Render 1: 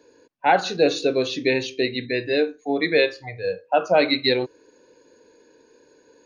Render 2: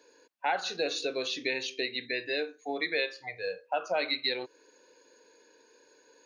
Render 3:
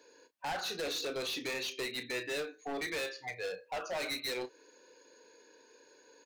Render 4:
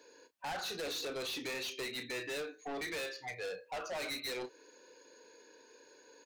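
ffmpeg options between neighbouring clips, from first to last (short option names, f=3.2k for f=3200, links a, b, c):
-af "highpass=f=970:p=1,acompressor=threshold=-32dB:ratio=2"
-filter_complex "[0:a]asoftclip=type=hard:threshold=-34dB,asplit=2[a][b];[b]adelay=32,volume=-12dB[c];[a][c]amix=inputs=2:normalize=0"
-af "asoftclip=type=tanh:threshold=-37dB,volume=1dB"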